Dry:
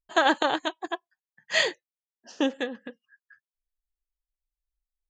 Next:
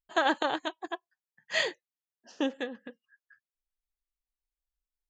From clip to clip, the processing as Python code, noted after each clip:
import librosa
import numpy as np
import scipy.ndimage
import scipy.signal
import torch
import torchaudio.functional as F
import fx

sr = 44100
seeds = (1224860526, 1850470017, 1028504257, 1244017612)

y = fx.high_shelf(x, sr, hz=6000.0, db=-4.5)
y = F.gain(torch.from_numpy(y), -4.5).numpy()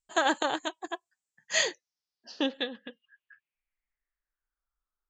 y = fx.filter_sweep_lowpass(x, sr, from_hz=7700.0, to_hz=1300.0, start_s=1.28, end_s=4.75, q=5.2)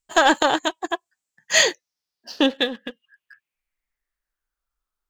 y = fx.leveller(x, sr, passes=1)
y = F.gain(torch.from_numpy(y), 7.0).numpy()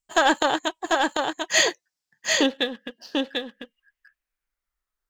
y = x + 10.0 ** (-3.5 / 20.0) * np.pad(x, (int(743 * sr / 1000.0), 0))[:len(x)]
y = F.gain(torch.from_numpy(y), -3.0).numpy()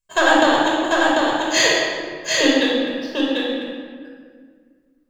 y = fx.room_shoebox(x, sr, seeds[0], volume_m3=2700.0, walls='mixed', distance_m=5.3)
y = F.gain(torch.from_numpy(y), -2.0).numpy()